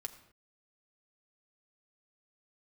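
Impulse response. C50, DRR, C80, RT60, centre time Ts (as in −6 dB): 12.5 dB, 4.5 dB, 13.5 dB, non-exponential decay, 8 ms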